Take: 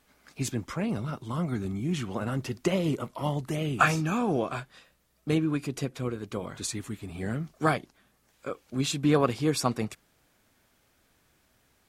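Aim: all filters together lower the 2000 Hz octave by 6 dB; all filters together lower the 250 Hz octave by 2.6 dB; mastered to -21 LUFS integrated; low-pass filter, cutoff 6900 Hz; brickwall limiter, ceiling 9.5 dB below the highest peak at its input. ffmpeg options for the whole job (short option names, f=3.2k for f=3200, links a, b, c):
-af "lowpass=6.9k,equalizer=f=250:t=o:g=-3.5,equalizer=f=2k:t=o:g=-8.5,volume=13dB,alimiter=limit=-7.5dB:level=0:latency=1"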